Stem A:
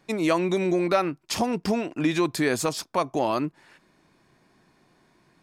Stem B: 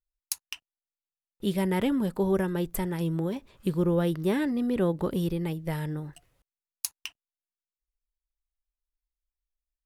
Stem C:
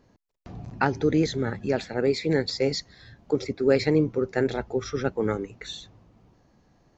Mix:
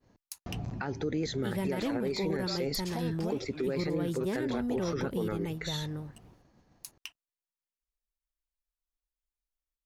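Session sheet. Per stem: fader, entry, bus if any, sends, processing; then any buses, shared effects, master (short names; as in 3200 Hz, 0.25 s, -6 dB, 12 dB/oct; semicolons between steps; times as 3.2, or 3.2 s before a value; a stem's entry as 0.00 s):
-13.5 dB, 1.55 s, bus A, no send, dry
-4.5 dB, 0.00 s, no bus, no send, dry
+2.5 dB, 0.00 s, bus A, no send, dry
bus A: 0.0 dB, expander -52 dBFS; compressor 2:1, threshold -31 dBFS, peak gain reduction 10.5 dB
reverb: off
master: limiter -23 dBFS, peak gain reduction 10.5 dB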